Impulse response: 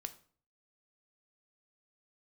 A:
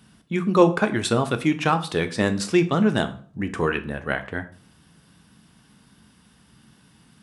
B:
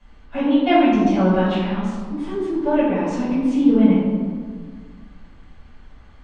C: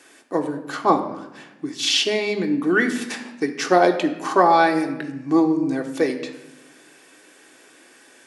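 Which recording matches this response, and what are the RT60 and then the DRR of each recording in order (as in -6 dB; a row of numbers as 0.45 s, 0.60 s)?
A; 0.45 s, 1.7 s, 0.95 s; 8.0 dB, -11.0 dB, 2.5 dB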